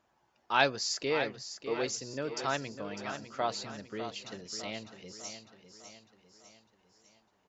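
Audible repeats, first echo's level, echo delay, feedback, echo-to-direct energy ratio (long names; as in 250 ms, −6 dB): 5, −10.0 dB, 602 ms, 50%, −9.0 dB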